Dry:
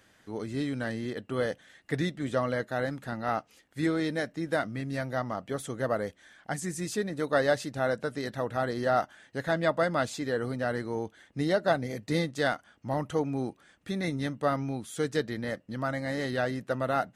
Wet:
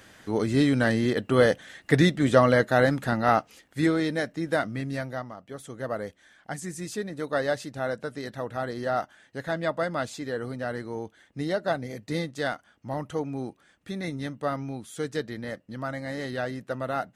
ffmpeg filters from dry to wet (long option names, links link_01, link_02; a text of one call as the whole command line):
ffmpeg -i in.wav -af "volume=17.5dB,afade=type=out:start_time=3.01:duration=1.04:silence=0.446684,afade=type=out:start_time=4.85:duration=0.51:silence=0.251189,afade=type=in:start_time=5.36:duration=0.66:silence=0.421697" out.wav